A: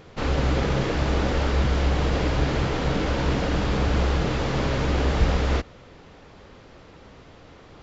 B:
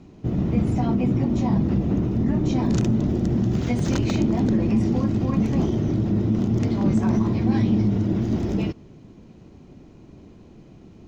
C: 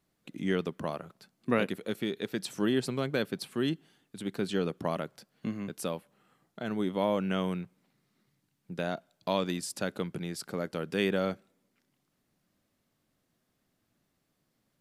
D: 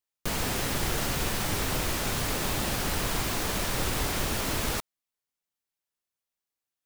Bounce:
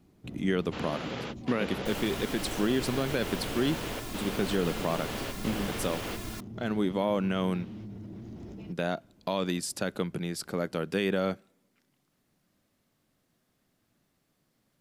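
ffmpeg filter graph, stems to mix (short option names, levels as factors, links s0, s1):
-filter_complex "[0:a]highpass=220,equalizer=f=3000:t=o:w=0.77:g=6,adelay=550,volume=0.282[s0];[1:a]alimiter=limit=0.0944:level=0:latency=1:release=46,volume=0.168[s1];[2:a]volume=1.41,asplit=2[s2][s3];[3:a]aecho=1:1:2.9:0.77,adelay=1600,volume=0.211[s4];[s3]apad=whole_len=369251[s5];[s0][s5]sidechaingate=range=0.0224:threshold=0.00126:ratio=16:detection=peak[s6];[s6][s1][s2][s4]amix=inputs=4:normalize=0,alimiter=limit=0.141:level=0:latency=1:release=62"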